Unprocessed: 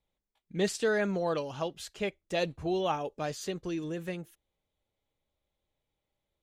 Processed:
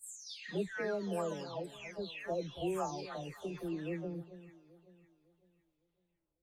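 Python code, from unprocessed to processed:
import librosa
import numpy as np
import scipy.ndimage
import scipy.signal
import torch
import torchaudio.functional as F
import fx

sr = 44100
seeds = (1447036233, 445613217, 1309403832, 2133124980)

y = fx.spec_delay(x, sr, highs='early', ms=664)
y = fx.rider(y, sr, range_db=3, speed_s=2.0)
y = fx.echo_alternate(y, sr, ms=277, hz=900.0, feedback_pct=57, wet_db=-12.0)
y = F.gain(torch.from_numpy(y), -6.0).numpy()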